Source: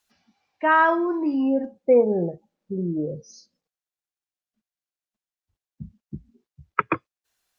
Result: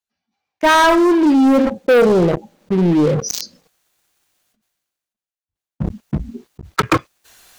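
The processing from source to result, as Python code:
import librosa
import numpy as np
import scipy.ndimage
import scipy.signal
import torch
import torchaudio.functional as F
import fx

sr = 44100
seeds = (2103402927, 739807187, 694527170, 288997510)

p1 = fx.notch(x, sr, hz=5200.0, q=25.0)
p2 = fx.rider(p1, sr, range_db=3, speed_s=0.5)
p3 = p1 + (p2 * 10.0 ** (-2.0 / 20.0))
p4 = fx.leveller(p3, sr, passes=5)
p5 = fx.sustainer(p4, sr, db_per_s=37.0)
y = p5 * 10.0 ** (-9.5 / 20.0)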